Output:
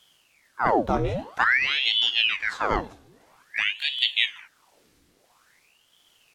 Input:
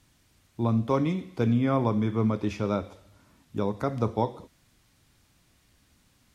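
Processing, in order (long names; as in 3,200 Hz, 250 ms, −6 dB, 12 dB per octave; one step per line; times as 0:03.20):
pitch shifter swept by a sawtooth +1 semitone, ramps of 230 ms
gain on a spectral selection 0:03.74–0:04.28, 1,500–3,600 Hz −13 dB
ring modulator whose carrier an LFO sweeps 1,700 Hz, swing 90%, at 0.5 Hz
level +6 dB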